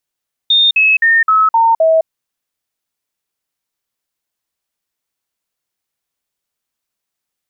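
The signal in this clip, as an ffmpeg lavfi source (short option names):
-f lavfi -i "aevalsrc='0.447*clip(min(mod(t,0.26),0.21-mod(t,0.26))/0.005,0,1)*sin(2*PI*3650*pow(2,-floor(t/0.26)/2)*mod(t,0.26))':d=1.56:s=44100"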